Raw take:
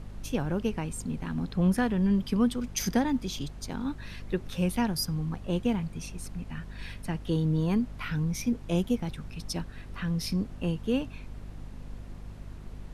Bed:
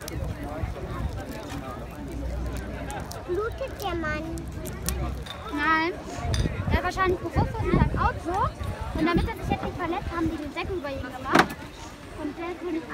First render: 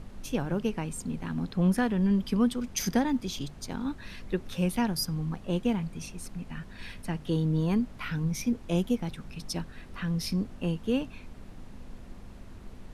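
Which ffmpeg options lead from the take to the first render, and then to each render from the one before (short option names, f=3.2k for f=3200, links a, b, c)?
-af "bandreject=f=50:t=h:w=4,bandreject=f=100:t=h:w=4,bandreject=f=150:t=h:w=4"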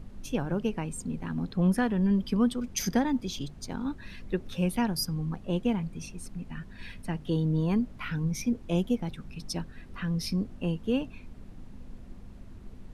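-af "afftdn=nr=6:nf=-47"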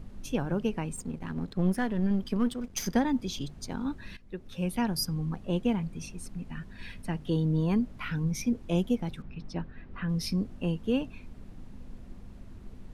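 -filter_complex "[0:a]asettb=1/sr,asplit=3[a][b][c];[a]atrim=end=0.964[d];[b]atrim=start=0.96:end=2.96,asetpts=PTS-STARTPTS,afade=t=in:d=0.004:c=qsin,afade=t=out:st=1.996:d=0.004:c=qsin,aeval=exprs='if(lt(val(0),0),0.447*val(0),val(0))':c=same[e];[c]atrim=start=2.956[f];[d][e]acrossfade=d=0.004:c1=hsin:c2=qsin[g];[g][f]acrossfade=d=0.004:c1=qsin:c2=hsin,asettb=1/sr,asplit=3[h][i][j];[h]atrim=end=9.224[k];[i]atrim=start=9.22:end=10.09,asetpts=PTS-STARTPTS,afade=t=in:d=0.004:c=qsin,afade=t=out:st=0.866:d=0.004:c=qsin,lowpass=2.5k[l];[j]atrim=start=10.086[m];[k][l]acrossfade=d=0.004:c1=hsin:c2=qsin[n];[n][m]acrossfade=d=0.004:c1=qsin:c2=hsin,asplit=2[o][p];[o]atrim=end=4.17,asetpts=PTS-STARTPTS,afade=t=out:st=4.166:d=0.004:c=hsin:silence=0.149624[q];[p]atrim=start=4.17,asetpts=PTS-STARTPTS,afade=t=in:d=0.77:silence=0.149624[r];[q][r]concat=n=2:v=0:a=1"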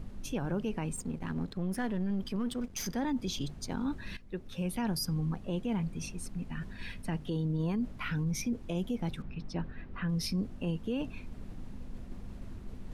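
-af "areverse,acompressor=mode=upward:threshold=-35dB:ratio=2.5,areverse,alimiter=level_in=1.5dB:limit=-24dB:level=0:latency=1:release=20,volume=-1.5dB"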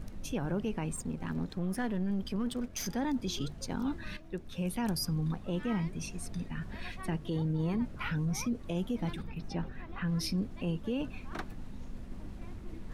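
-filter_complex "[1:a]volume=-23dB[a];[0:a][a]amix=inputs=2:normalize=0"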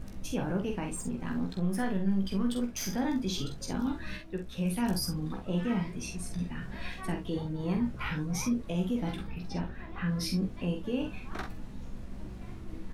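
-filter_complex "[0:a]asplit=2[a][b];[b]adelay=16,volume=-6dB[c];[a][c]amix=inputs=2:normalize=0,asplit=2[d][e];[e]aecho=0:1:46|68:0.531|0.168[f];[d][f]amix=inputs=2:normalize=0"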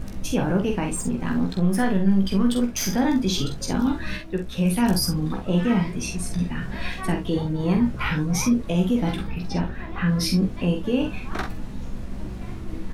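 -af "volume=9.5dB"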